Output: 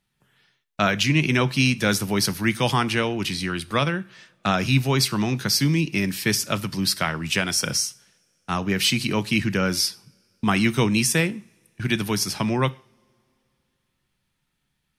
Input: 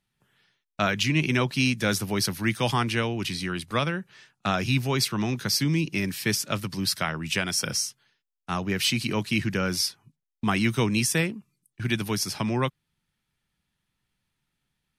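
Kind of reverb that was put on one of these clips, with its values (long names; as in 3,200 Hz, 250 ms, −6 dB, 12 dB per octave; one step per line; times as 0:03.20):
coupled-rooms reverb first 0.43 s, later 2.9 s, from −27 dB, DRR 15.5 dB
level +3.5 dB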